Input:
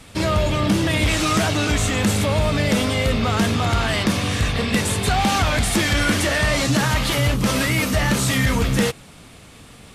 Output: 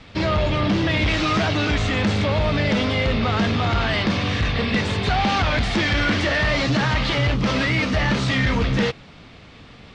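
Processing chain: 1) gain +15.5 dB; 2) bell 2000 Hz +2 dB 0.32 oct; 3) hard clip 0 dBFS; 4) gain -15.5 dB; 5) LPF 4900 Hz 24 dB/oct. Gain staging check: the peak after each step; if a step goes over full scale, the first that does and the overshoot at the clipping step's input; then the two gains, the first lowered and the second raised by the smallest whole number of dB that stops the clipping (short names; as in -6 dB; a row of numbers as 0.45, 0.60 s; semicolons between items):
+4.0, +5.0, 0.0, -15.5, -13.5 dBFS; step 1, 5.0 dB; step 1 +10.5 dB, step 4 -10.5 dB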